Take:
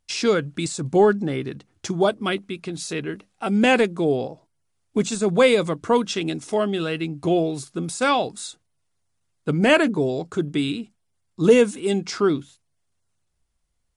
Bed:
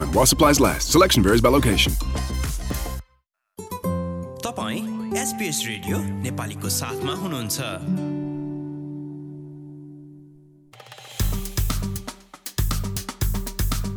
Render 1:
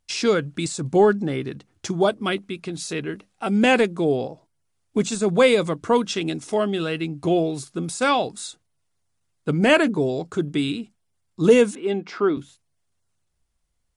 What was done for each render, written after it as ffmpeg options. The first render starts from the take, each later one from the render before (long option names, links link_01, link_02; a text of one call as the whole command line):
ffmpeg -i in.wav -filter_complex "[0:a]asettb=1/sr,asplit=3[link_01][link_02][link_03];[link_01]atrim=end=11.754[link_04];[link_02]atrim=start=11.75:end=12.37,asetpts=PTS-STARTPTS,afade=type=in:duration=0.004:curve=qsin,afade=type=out:start_time=0.616:duration=0.004:curve=qsin,highpass=240,lowpass=2600[link_05];[link_03]atrim=start=12.366[link_06];[link_04][link_05]acrossfade=duration=0.004:curve1=hsin:curve2=qsin[link_07];[link_07][link_06]acrossfade=duration=0.004:curve1=qsin:curve2=hsin" out.wav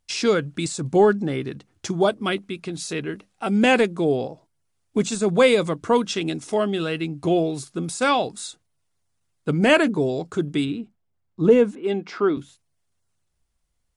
ffmpeg -i in.wav -filter_complex "[0:a]asplit=3[link_01][link_02][link_03];[link_01]afade=type=out:start_time=10.64:duration=0.02[link_04];[link_02]lowpass=frequency=1100:poles=1,afade=type=in:start_time=10.64:duration=0.02,afade=type=out:start_time=11.83:duration=0.02[link_05];[link_03]afade=type=in:start_time=11.83:duration=0.02[link_06];[link_04][link_05][link_06]amix=inputs=3:normalize=0" out.wav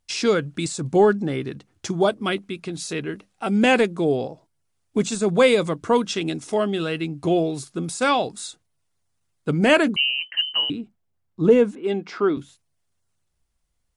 ffmpeg -i in.wav -filter_complex "[0:a]asettb=1/sr,asplit=3[link_01][link_02][link_03];[link_01]atrim=end=9.964[link_04];[link_02]atrim=start=9.96:end=10.7,asetpts=PTS-STARTPTS,afade=type=in:duration=0.004:curve=qsin,afade=type=out:start_time=0.736:duration=0.004:curve=qsin,lowpass=frequency=2700:width_type=q:width=0.5098,lowpass=frequency=2700:width_type=q:width=0.6013,lowpass=frequency=2700:width_type=q:width=0.9,lowpass=frequency=2700:width_type=q:width=2.563,afreqshift=-3200[link_05];[link_03]atrim=start=10.696[link_06];[link_04][link_05]acrossfade=duration=0.004:curve1=hsin:curve2=qsin[link_07];[link_07][link_06]acrossfade=duration=0.004:curve1=qsin:curve2=hsin" out.wav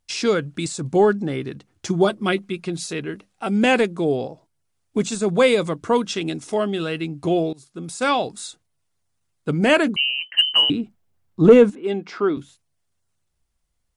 ffmpeg -i in.wav -filter_complex "[0:a]asettb=1/sr,asplit=3[link_01][link_02][link_03];[link_01]atrim=end=1.874[link_04];[link_02]atrim=start=1.87:end=2.86,asetpts=PTS-STARTPTS,afade=type=in:duration=0.004:curve=qsin,afade=type=out:start_time=0.986:duration=0.004:curve=qsin,aecho=1:1:5.6:0.67,atrim=end_sample=43659[link_05];[link_03]atrim=start=2.856[link_06];[link_04][link_05]acrossfade=duration=0.004:curve1=hsin:curve2=qsin[link_07];[link_07][link_06]acrossfade=duration=0.004:curve1=qsin:curve2=hsin,asettb=1/sr,asplit=3[link_08][link_09][link_10];[link_08]atrim=end=10.384[link_11];[link_09]atrim=start=10.38:end=11.7,asetpts=PTS-STARTPTS,afade=type=in:duration=0.004:curve=qsin,afade=type=out:start_time=1.316:duration=0.004:curve=qsin,acontrast=64[link_12];[link_10]atrim=start=11.696[link_13];[link_11][link_12]acrossfade=duration=0.004:curve1=hsin:curve2=qsin[link_14];[link_14][link_13]acrossfade=duration=0.004:curve1=qsin:curve2=hsin,asplit=2[link_15][link_16];[link_15]atrim=end=7.53,asetpts=PTS-STARTPTS,afade=type=out:start_time=7.526:duration=0.004:curve=hsin:silence=0.0794328[link_17];[link_16]atrim=start=7.53,asetpts=PTS-STARTPTS,afade=type=in:duration=0.56:silence=0.0794328[link_18];[link_17][link_18]concat=n=2:v=0:a=1" out.wav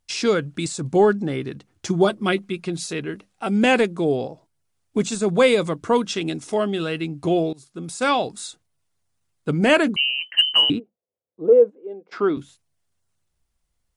ffmpeg -i in.wav -filter_complex "[0:a]asplit=3[link_01][link_02][link_03];[link_01]afade=type=out:start_time=10.78:duration=0.02[link_04];[link_02]bandpass=frequency=500:width_type=q:width=5.6,afade=type=in:start_time=10.78:duration=0.02,afade=type=out:start_time=12.11:duration=0.02[link_05];[link_03]afade=type=in:start_time=12.11:duration=0.02[link_06];[link_04][link_05][link_06]amix=inputs=3:normalize=0" out.wav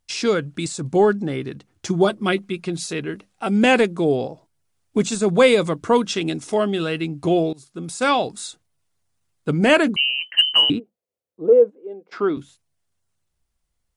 ffmpeg -i in.wav -af "dynaudnorm=framelen=330:gausssize=17:maxgain=3dB" out.wav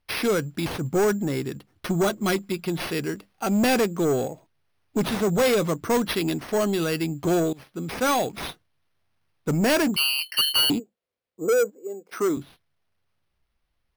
ffmpeg -i in.wav -af "acrusher=samples=6:mix=1:aa=0.000001,asoftclip=type=tanh:threshold=-17dB" out.wav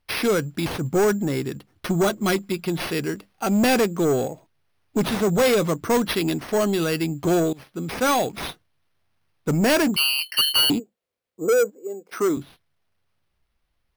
ffmpeg -i in.wav -af "volume=2dB" out.wav